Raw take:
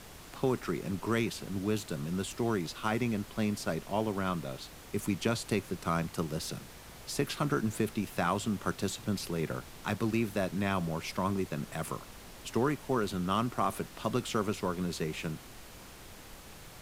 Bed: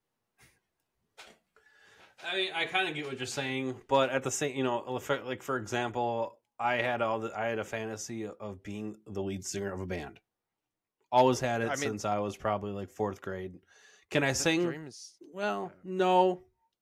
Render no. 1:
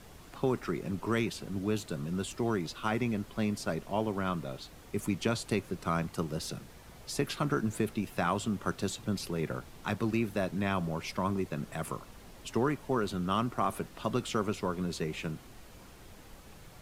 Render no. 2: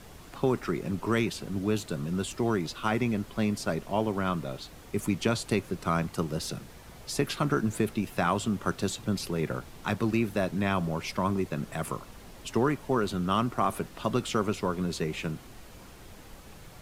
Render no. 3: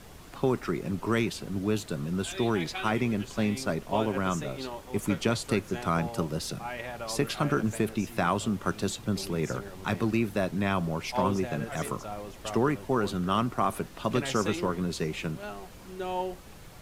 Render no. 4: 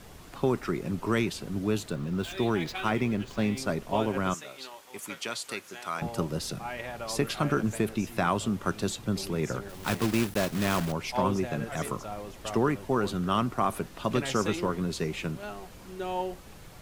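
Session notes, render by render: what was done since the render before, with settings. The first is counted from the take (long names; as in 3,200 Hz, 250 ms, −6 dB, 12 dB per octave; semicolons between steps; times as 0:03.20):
broadband denoise 6 dB, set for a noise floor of −50 dBFS
level +3.5 dB
mix in bed −8 dB
0:01.90–0:03.58: running median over 5 samples; 0:04.34–0:06.02: high-pass filter 1,500 Hz 6 dB per octave; 0:09.69–0:10.93: one scale factor per block 3 bits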